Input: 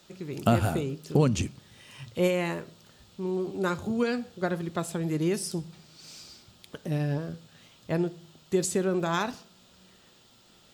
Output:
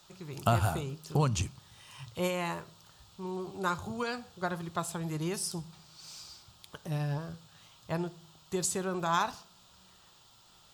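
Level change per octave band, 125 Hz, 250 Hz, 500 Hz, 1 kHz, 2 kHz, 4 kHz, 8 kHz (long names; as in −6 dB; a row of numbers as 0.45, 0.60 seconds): −3.5, −8.0, −7.5, +1.0, −3.0, −1.5, 0.0 decibels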